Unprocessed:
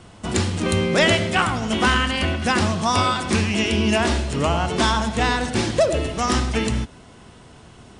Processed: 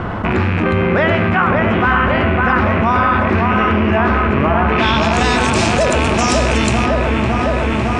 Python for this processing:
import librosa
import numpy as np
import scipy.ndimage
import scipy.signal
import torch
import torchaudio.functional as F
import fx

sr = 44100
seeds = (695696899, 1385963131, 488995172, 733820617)

p1 = fx.rattle_buzz(x, sr, strikes_db=-29.0, level_db=-15.0)
p2 = fx.filter_sweep_lowpass(p1, sr, from_hz=1500.0, to_hz=7800.0, start_s=4.66, end_s=5.22, q=1.6)
p3 = p2 + fx.echo_wet_lowpass(p2, sr, ms=557, feedback_pct=72, hz=2100.0, wet_db=-4.0, dry=0)
y = fx.env_flatten(p3, sr, amount_pct=70)